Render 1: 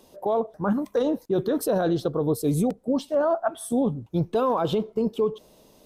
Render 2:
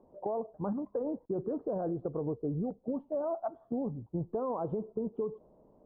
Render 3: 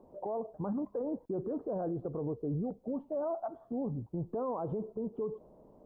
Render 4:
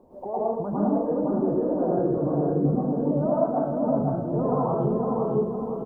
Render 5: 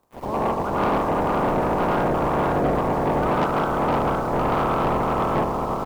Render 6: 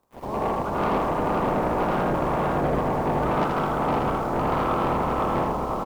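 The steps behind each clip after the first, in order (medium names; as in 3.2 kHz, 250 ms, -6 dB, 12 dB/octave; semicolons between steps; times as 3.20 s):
low-pass 1 kHz 24 dB/octave; compression, threshold -25 dBFS, peak gain reduction 6.5 dB; trim -5.5 dB
peak limiter -32 dBFS, peak gain reduction 8.5 dB; trim +3.5 dB
feedback delay 511 ms, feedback 42%, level -3.5 dB; plate-style reverb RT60 0.83 s, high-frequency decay 0.85×, pre-delay 95 ms, DRR -7 dB; trim +3 dB
spectral peaks clipped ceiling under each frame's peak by 28 dB; waveshaping leveller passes 3; trim -5.5 dB
delay 81 ms -4.5 dB; trim -3.5 dB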